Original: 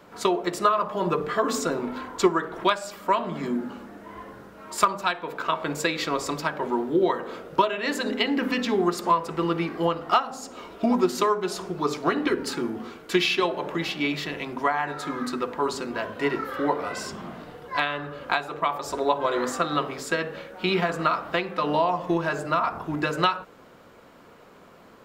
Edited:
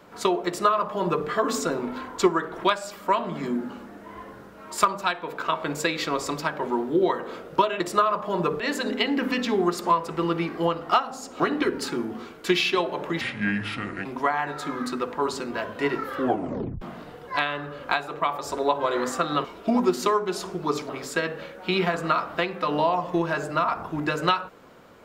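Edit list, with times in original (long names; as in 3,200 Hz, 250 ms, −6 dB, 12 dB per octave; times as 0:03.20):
0:00.47–0:01.27: duplicate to 0:07.80
0:10.60–0:12.05: move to 0:19.85
0:13.86–0:14.46: play speed 71%
0:16.59: tape stop 0.63 s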